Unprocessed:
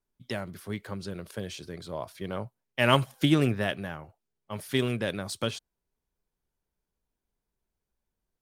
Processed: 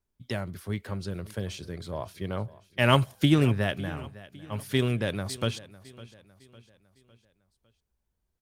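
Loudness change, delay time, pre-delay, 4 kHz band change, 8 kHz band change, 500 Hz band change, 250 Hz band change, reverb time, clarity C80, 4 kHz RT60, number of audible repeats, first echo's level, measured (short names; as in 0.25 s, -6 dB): +1.0 dB, 0.555 s, none, 0.0 dB, 0.0 dB, +0.5 dB, +1.5 dB, none, none, none, 3, -19.0 dB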